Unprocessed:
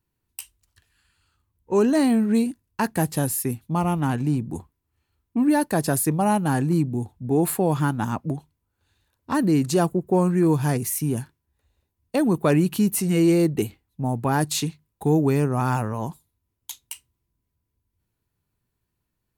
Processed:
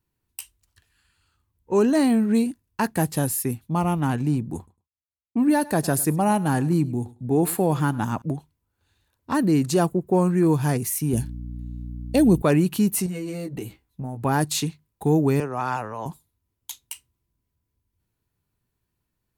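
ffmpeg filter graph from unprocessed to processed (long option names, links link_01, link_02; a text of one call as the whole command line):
ffmpeg -i in.wav -filter_complex "[0:a]asettb=1/sr,asplit=3[link_01][link_02][link_03];[link_01]atrim=end=4.574[link_04];[link_02]atrim=start=4.57:end=8.22,asetpts=PTS-STARTPTS,afade=type=in:duration=0.004:curve=qsin,afade=type=out:start_time=3.646:duration=0.004:curve=qsin,agate=range=-33dB:threshold=-47dB:ratio=3:release=100:detection=peak,aecho=1:1:103|206:0.1|0.016,atrim=end_sample=160965[link_05];[link_03]atrim=start=8.216[link_06];[link_04][link_05]acrossfade=duration=0.004:curve1=hsin:curve2=qsin[link_07];[link_07][link_06]acrossfade=duration=0.004:curve1=qsin:curve2=hsin,asettb=1/sr,asplit=3[link_08][link_09][link_10];[link_08]atrim=end=11.134[link_11];[link_09]atrim=start=11.13:end=12.42,asetpts=PTS-STARTPTS,afade=type=in:duration=0.004:curve=qsin,afade=type=out:start_time=1.286:duration=0.004:curve=qsin,equalizer=frequency=1200:width=1.1:gain=-13.5,acontrast=31,aeval=exprs='val(0)+0.0251*(sin(2*PI*60*n/s)+sin(2*PI*2*60*n/s)/2+sin(2*PI*3*60*n/s)/3+sin(2*PI*4*60*n/s)/4+sin(2*PI*5*60*n/s)/5)':channel_layout=same[link_12];[link_10]atrim=start=12.416[link_13];[link_11][link_12]acrossfade=duration=0.004:curve1=hsin:curve2=qsin[link_14];[link_14][link_13]acrossfade=duration=0.004:curve1=qsin:curve2=hsin,asettb=1/sr,asplit=3[link_15][link_16][link_17];[link_15]atrim=end=13.064[link_18];[link_16]atrim=start=13.06:end=14.23,asetpts=PTS-STARTPTS,afade=type=in:duration=0.004:curve=qsin,afade=type=out:start_time=1.166:duration=0.004:curve=qsin,asplit=2[link_19][link_20];[link_20]adelay=16,volume=-3dB[link_21];[link_19][link_21]amix=inputs=2:normalize=0,atrim=end_sample=51597,acompressor=threshold=-28dB:ratio=6:attack=3.2:release=140:knee=1:detection=peak[link_22];[link_17]atrim=start=14.226[link_23];[link_18][link_22]acrossfade=duration=0.004:curve1=hsin:curve2=qsin[link_24];[link_24][link_23]acrossfade=duration=0.004:curve1=qsin:curve2=hsin,asettb=1/sr,asplit=3[link_25][link_26][link_27];[link_25]atrim=end=15.404[link_28];[link_26]atrim=start=15.4:end=16.06,asetpts=PTS-STARTPTS,afade=type=in:duration=0.004:curve=qsin,afade=type=out:start_time=0.656:duration=0.004:curve=qsin,highpass=44,acrossover=split=410 6300:gain=0.251 1 0.224[link_29][link_30][link_31];[link_29][link_30][link_31]amix=inputs=3:normalize=0[link_32];[link_27]atrim=start=16.056[link_33];[link_28][link_32]acrossfade=duration=0.004:curve1=hsin:curve2=qsin[link_34];[link_34][link_33]acrossfade=duration=0.004:curve1=qsin:curve2=hsin" out.wav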